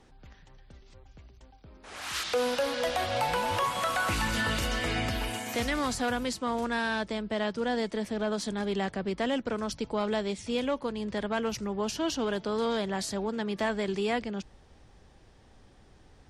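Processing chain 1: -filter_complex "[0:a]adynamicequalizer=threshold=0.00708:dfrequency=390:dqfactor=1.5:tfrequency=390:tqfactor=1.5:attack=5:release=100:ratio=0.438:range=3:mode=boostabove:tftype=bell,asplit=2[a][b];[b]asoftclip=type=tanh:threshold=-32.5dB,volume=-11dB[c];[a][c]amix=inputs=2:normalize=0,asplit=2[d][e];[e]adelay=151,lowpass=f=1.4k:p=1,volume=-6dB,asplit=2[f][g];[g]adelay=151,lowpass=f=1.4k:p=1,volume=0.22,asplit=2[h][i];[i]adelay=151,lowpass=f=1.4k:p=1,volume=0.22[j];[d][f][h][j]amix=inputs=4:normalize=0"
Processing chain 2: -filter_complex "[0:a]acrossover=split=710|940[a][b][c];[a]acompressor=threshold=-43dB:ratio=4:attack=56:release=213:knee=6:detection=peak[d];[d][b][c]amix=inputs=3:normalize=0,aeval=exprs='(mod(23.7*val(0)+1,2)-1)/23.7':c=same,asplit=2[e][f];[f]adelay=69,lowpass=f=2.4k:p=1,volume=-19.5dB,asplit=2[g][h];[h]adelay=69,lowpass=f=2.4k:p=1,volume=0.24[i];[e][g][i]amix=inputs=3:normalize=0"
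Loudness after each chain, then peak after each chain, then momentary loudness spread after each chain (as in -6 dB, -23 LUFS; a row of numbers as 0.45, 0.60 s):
-26.5, -33.5 LUFS; -14.0, -26.5 dBFS; 4, 7 LU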